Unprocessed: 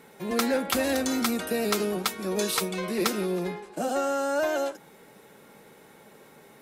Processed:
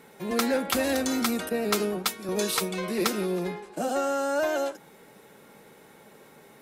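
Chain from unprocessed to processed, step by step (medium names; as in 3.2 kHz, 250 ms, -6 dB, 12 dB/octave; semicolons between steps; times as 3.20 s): 1.49–2.29 s: three bands expanded up and down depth 100%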